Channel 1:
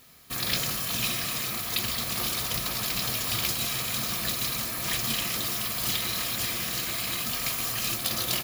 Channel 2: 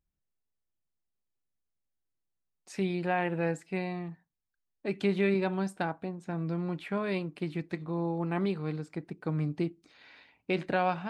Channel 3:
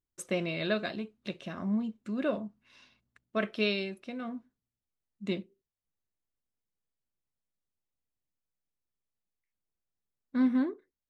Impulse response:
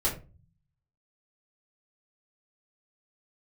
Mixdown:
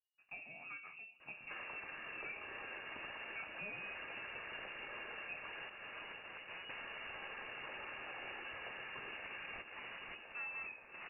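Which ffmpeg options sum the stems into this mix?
-filter_complex "[0:a]asoftclip=type=tanh:threshold=-24.5dB,adelay=1200,volume=-2dB,asplit=3[link_01][link_02][link_03];[link_01]atrim=end=5.69,asetpts=PTS-STARTPTS,afade=type=out:start_time=5.686:duration=0.004:curve=hsin[link_04];[link_02]atrim=start=5.69:end=6.69,asetpts=PTS-STARTPTS,volume=0[link_05];[link_03]atrim=start=6.69,asetpts=PTS-STARTPTS,afade=type=in:duration=0.004:curve=hsin[link_06];[link_04][link_05][link_06]concat=n=3:v=0:a=1,asplit=2[link_07][link_08];[link_08]volume=-11dB[link_09];[1:a]aeval=exprs='(mod(94.4*val(0)+1,2)-1)/94.4':channel_layout=same,adelay=450,volume=-4dB,asplit=2[link_10][link_11];[link_11]volume=-19dB[link_12];[2:a]volume=-9dB,afade=type=in:start_time=0.86:duration=0.66:silence=0.266073,asplit=4[link_13][link_14][link_15][link_16];[link_14]volume=-9.5dB[link_17];[link_15]volume=-20dB[link_18];[link_16]apad=whole_len=424757[link_19];[link_07][link_19]sidechaincompress=threshold=-43dB:ratio=3:attack=16:release=319[link_20];[3:a]atrim=start_sample=2205[link_21];[link_12][link_17]amix=inputs=2:normalize=0[link_22];[link_22][link_21]afir=irnorm=-1:irlink=0[link_23];[link_09][link_18]amix=inputs=2:normalize=0,aecho=0:1:529|1058|1587|2116|2645|3174|3703|4232|4761|5290:1|0.6|0.36|0.216|0.13|0.0778|0.0467|0.028|0.0168|0.0101[link_24];[link_20][link_10][link_13][link_23][link_24]amix=inputs=5:normalize=0,acrossover=split=460|1700[link_25][link_26][link_27];[link_25]acompressor=threshold=-52dB:ratio=4[link_28];[link_26]acompressor=threshold=-50dB:ratio=4[link_29];[link_27]acompressor=threshold=-44dB:ratio=4[link_30];[link_28][link_29][link_30]amix=inputs=3:normalize=0,lowpass=frequency=2500:width_type=q:width=0.5098,lowpass=frequency=2500:width_type=q:width=0.6013,lowpass=frequency=2500:width_type=q:width=0.9,lowpass=frequency=2500:width_type=q:width=2.563,afreqshift=-2900"

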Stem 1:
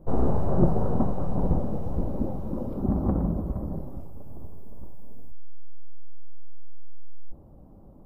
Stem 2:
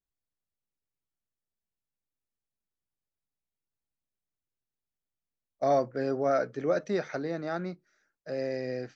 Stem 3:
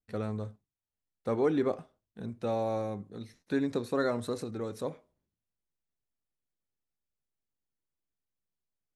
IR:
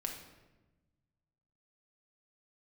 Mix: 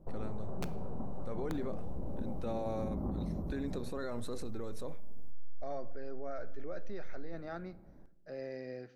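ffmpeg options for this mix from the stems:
-filter_complex "[0:a]aeval=exprs='(mod(2.99*val(0)+1,2)-1)/2.99':channel_layout=same,acompressor=threshold=-22dB:ratio=6,volume=-10.5dB,asplit=2[link_01][link_02];[link_02]volume=-8.5dB[link_03];[1:a]lowpass=5000,volume=-11dB,asplit=2[link_04][link_05];[link_05]volume=-13dB[link_06];[2:a]alimiter=limit=-22dB:level=0:latency=1,volume=-3.5dB[link_07];[3:a]atrim=start_sample=2205[link_08];[link_03][link_06]amix=inputs=2:normalize=0[link_09];[link_09][link_08]afir=irnorm=-1:irlink=0[link_10];[link_01][link_04][link_07][link_10]amix=inputs=4:normalize=0,alimiter=level_in=4.5dB:limit=-24dB:level=0:latency=1:release=32,volume=-4.5dB"

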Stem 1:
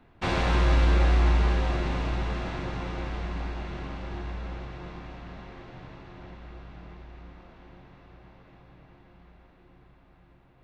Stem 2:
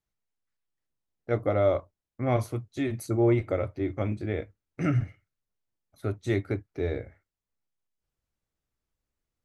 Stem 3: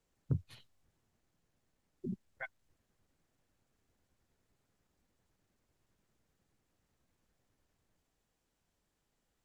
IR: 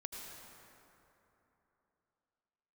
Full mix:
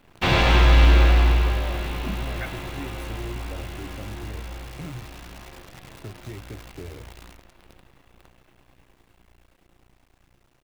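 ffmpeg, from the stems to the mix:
-filter_complex "[0:a]acontrast=61,volume=-6dB,afade=type=out:start_time=0.83:duration=0.72:silence=0.398107,asplit=2[link_01][link_02];[link_02]volume=-6.5dB[link_03];[1:a]lowshelf=frequency=290:gain=10,acompressor=threshold=-28dB:ratio=6,volume=-13dB[link_04];[2:a]volume=0.5dB[link_05];[link_03]aecho=0:1:100:1[link_06];[link_01][link_04][link_05][link_06]amix=inputs=4:normalize=0,equalizer=frequency=3000:width_type=o:width=1:gain=6.5,acontrast=33,acrusher=bits=8:dc=4:mix=0:aa=0.000001"

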